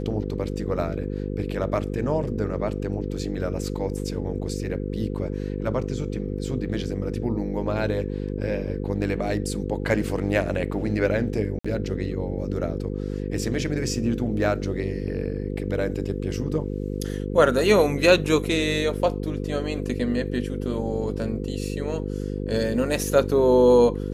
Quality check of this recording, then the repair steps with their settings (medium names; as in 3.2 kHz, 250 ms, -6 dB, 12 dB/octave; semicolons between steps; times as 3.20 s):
buzz 50 Hz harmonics 10 -29 dBFS
11.59–11.64 s: dropout 55 ms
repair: de-hum 50 Hz, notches 10; interpolate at 11.59 s, 55 ms